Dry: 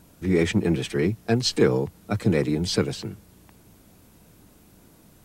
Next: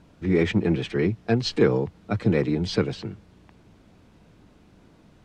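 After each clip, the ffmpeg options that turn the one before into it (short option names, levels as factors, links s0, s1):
-af "lowpass=3900"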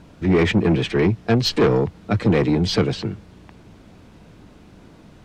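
-af "asoftclip=type=tanh:threshold=0.112,volume=2.51"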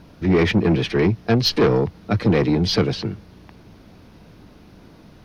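-af "aexciter=amount=1.2:drive=2.2:freq=4300"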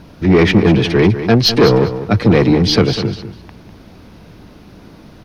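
-af "aecho=1:1:199|398:0.282|0.0507,volume=2.11"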